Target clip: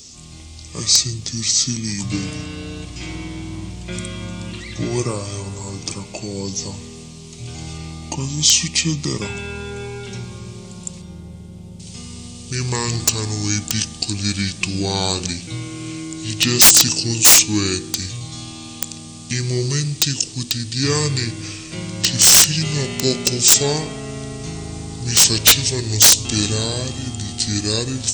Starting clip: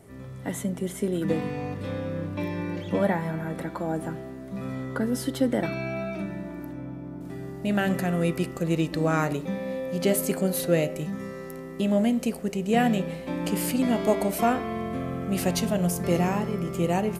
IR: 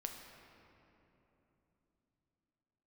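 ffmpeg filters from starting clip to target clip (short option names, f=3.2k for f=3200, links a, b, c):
-af "asetrate=26945,aresample=44100,aexciter=amount=12:drive=4:freq=2.3k,aeval=exprs='(mod(1.26*val(0)+1,2)-1)/1.26':c=same,volume=1dB"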